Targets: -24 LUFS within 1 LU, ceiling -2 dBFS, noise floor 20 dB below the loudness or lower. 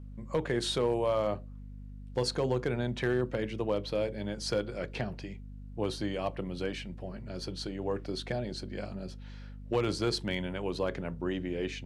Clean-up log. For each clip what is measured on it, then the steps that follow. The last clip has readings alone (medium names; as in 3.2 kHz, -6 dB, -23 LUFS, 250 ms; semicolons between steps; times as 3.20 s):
clipped samples 0.2%; clipping level -21.0 dBFS; hum 50 Hz; highest harmonic 250 Hz; hum level -42 dBFS; loudness -33.5 LUFS; peak level -21.0 dBFS; loudness target -24.0 LUFS
-> clip repair -21 dBFS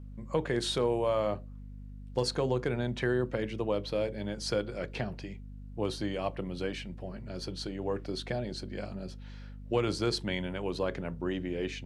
clipped samples 0.0%; hum 50 Hz; highest harmonic 250 Hz; hum level -42 dBFS
-> de-hum 50 Hz, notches 5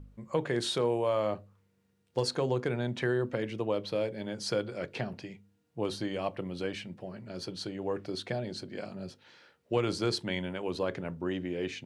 hum not found; loudness -33.5 LUFS; peak level -16.0 dBFS; loudness target -24.0 LUFS
-> trim +9.5 dB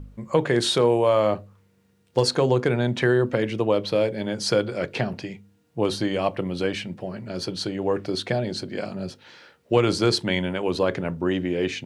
loudness -24.0 LUFS; peak level -6.5 dBFS; noise floor -63 dBFS